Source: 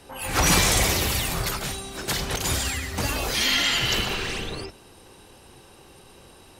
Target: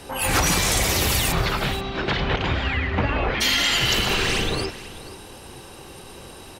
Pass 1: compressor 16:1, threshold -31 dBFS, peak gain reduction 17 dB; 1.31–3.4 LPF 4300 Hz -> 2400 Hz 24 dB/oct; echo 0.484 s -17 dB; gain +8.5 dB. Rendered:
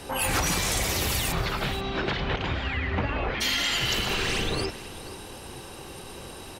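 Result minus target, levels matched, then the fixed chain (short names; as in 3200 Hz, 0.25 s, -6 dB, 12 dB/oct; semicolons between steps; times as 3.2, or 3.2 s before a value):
compressor: peak gain reduction +5.5 dB
compressor 16:1, threshold -25 dBFS, peak gain reduction 11 dB; 1.31–3.4 LPF 4300 Hz -> 2400 Hz 24 dB/oct; echo 0.484 s -17 dB; gain +8.5 dB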